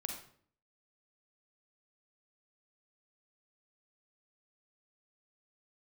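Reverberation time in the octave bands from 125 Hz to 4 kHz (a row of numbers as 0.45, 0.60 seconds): 0.65, 0.70, 0.60, 0.50, 0.45, 0.45 seconds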